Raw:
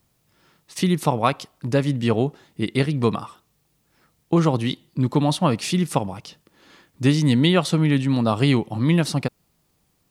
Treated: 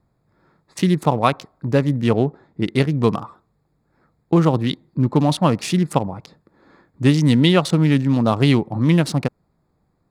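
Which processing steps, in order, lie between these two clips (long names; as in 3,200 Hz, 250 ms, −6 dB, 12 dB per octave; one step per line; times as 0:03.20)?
adaptive Wiener filter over 15 samples
0:02.13–0:02.66: high-shelf EQ 7,600 Hz −9 dB
level +3 dB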